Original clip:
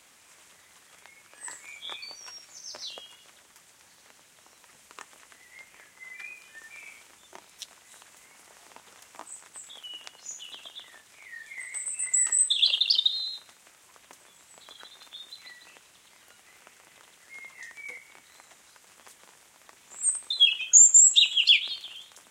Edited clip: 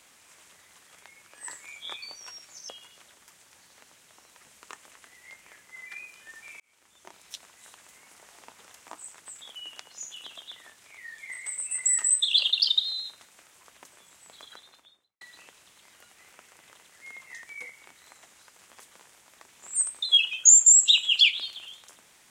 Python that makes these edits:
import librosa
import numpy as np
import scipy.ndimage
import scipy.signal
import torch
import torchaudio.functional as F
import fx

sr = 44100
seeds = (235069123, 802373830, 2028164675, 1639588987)

y = fx.studio_fade_out(x, sr, start_s=14.73, length_s=0.76)
y = fx.edit(y, sr, fx.cut(start_s=2.69, length_s=0.28),
    fx.fade_in_span(start_s=6.88, length_s=0.61), tone=tone)